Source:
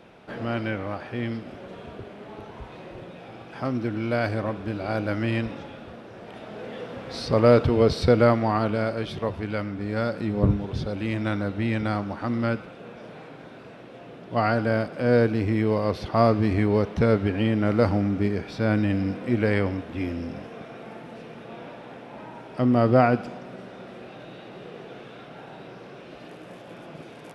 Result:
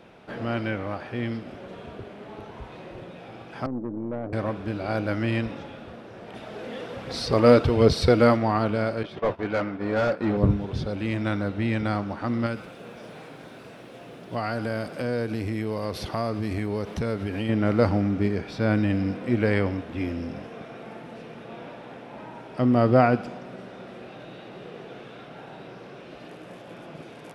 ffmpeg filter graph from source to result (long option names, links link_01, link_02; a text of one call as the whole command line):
ffmpeg -i in.wav -filter_complex "[0:a]asettb=1/sr,asplit=3[link_01][link_02][link_03];[link_01]atrim=end=3.664[link_04];[link_02]atrim=start=3.66:end=4.33,asetpts=PTS-STARTPTS,afade=type=in:duration=0.004:curve=qsin,afade=type=out:start_time=0.666:duration=0.004:curve=qsin,asuperpass=centerf=290:order=4:qfactor=0.74,aeval=exprs='(tanh(17.8*val(0)+0.4)-tanh(0.4))/17.8':channel_layout=same[link_05];[link_03]atrim=start=4.326[link_06];[link_04][link_05]acrossfade=duration=0.004:curve1=hsin:curve2=qsin[link_07];[link_07][link_06]acrossfade=duration=0.004:curve1=qsin:curve2=hsin,asettb=1/sr,asplit=3[link_08][link_09][link_10];[link_08]atrim=end=6.344[link_11];[link_09]atrim=start=6.34:end=8.37,asetpts=PTS-STARTPTS,afade=type=in:duration=0.004:curve=qsin,afade=type=out:start_time=2.026:duration=0.004:curve=qsin,highshelf=frequency=3700:gain=5,aphaser=in_gain=1:out_gain=1:delay=4.3:decay=0.33:speed=1.3:type=triangular[link_12];[link_10]atrim=start=8.366[link_13];[link_11][link_12]acrossfade=duration=0.004:curve1=hsin:curve2=qsin[link_14];[link_14][link_13]acrossfade=duration=0.004:curve1=qsin:curve2=hsin,asettb=1/sr,asplit=3[link_15][link_16][link_17];[link_15]atrim=end=9.034[link_18];[link_16]atrim=start=9.03:end=10.37,asetpts=PTS-STARTPTS,afade=type=in:duration=0.004:curve=qsin,afade=type=out:start_time=1.336:duration=0.004:curve=qsin,agate=range=-33dB:threshold=-26dB:ratio=3:release=100:detection=peak,asplit=2[link_19][link_20];[link_20]highpass=frequency=720:poles=1,volume=23dB,asoftclip=type=tanh:threshold=-13.5dB[link_21];[link_19][link_21]amix=inputs=2:normalize=0,lowpass=frequency=1100:poles=1,volume=-6dB[link_22];[link_17]atrim=start=10.366[link_23];[link_18][link_22]acrossfade=duration=0.004:curve1=hsin:curve2=qsin[link_24];[link_24][link_23]acrossfade=duration=0.004:curve1=qsin:curve2=hsin,asettb=1/sr,asplit=3[link_25][link_26][link_27];[link_25]atrim=end=12.464[link_28];[link_26]atrim=start=12.46:end=17.49,asetpts=PTS-STARTPTS,afade=type=in:duration=0.004:curve=qsin,afade=type=out:start_time=5.026:duration=0.004:curve=qsin,acompressor=threshold=-25dB:ratio=3:attack=3.2:release=140:knee=1:detection=peak,aemphasis=mode=production:type=50fm[link_29];[link_27]atrim=start=17.486[link_30];[link_28][link_29]acrossfade=duration=0.004:curve1=hsin:curve2=qsin[link_31];[link_31][link_30]acrossfade=duration=0.004:curve1=qsin:curve2=hsin" out.wav